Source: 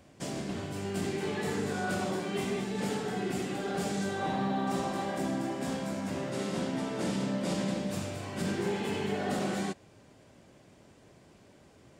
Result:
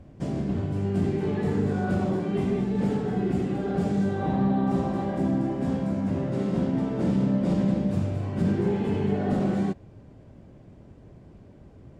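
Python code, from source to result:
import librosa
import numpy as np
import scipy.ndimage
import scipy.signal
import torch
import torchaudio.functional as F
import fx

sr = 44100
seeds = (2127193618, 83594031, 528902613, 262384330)

y = fx.tilt_eq(x, sr, slope=-4.0)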